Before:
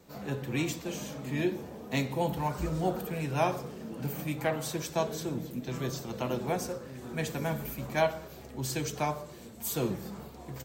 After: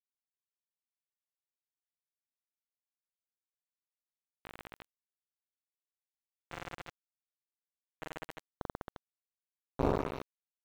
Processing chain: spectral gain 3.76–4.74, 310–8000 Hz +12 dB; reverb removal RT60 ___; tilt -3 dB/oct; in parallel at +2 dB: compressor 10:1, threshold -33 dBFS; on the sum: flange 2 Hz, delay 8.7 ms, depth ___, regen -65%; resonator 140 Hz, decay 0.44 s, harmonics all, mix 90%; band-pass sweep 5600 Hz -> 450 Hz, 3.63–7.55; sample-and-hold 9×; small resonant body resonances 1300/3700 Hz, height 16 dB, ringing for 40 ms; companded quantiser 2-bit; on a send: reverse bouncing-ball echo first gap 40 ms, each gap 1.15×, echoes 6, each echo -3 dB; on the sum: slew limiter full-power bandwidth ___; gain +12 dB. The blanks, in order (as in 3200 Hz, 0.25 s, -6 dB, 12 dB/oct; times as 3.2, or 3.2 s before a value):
0.86 s, 6.2 ms, 9.8 Hz